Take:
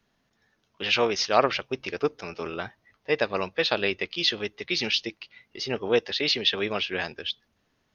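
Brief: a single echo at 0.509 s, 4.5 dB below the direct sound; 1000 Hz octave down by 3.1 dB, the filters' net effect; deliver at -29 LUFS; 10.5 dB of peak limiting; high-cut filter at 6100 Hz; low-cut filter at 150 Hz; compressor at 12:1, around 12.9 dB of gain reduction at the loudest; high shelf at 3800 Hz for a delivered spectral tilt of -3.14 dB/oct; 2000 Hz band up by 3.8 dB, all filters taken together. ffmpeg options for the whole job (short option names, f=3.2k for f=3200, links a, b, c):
-af "highpass=150,lowpass=6.1k,equalizer=f=1k:t=o:g=-6.5,equalizer=f=2k:t=o:g=8.5,highshelf=f=3.8k:g=-6,acompressor=threshold=-29dB:ratio=12,alimiter=level_in=1.5dB:limit=-24dB:level=0:latency=1,volume=-1.5dB,aecho=1:1:509:0.596,volume=7dB"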